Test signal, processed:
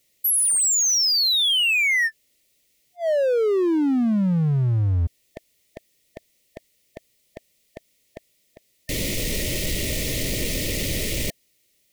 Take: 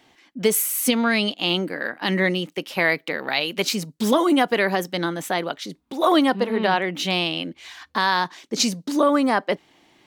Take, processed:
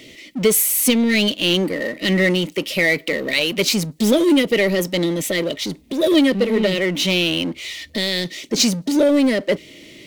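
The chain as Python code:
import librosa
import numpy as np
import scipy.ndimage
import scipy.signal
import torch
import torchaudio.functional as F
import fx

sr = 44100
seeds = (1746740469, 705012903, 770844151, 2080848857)

y = fx.brickwall_bandstop(x, sr, low_hz=660.0, high_hz=1800.0)
y = fx.power_curve(y, sr, exponent=0.7)
y = y * 10.0 ** (1.5 / 20.0)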